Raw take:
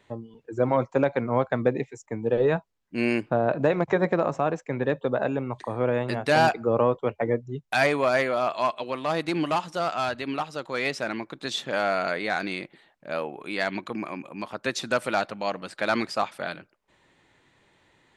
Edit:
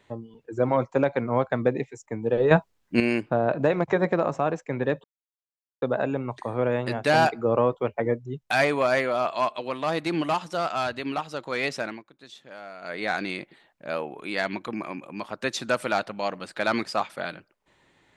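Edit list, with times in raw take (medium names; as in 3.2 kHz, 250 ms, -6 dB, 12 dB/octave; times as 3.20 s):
2.51–3.00 s: gain +8.5 dB
5.04 s: insert silence 0.78 s
11.02–12.27 s: dip -16.5 dB, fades 0.24 s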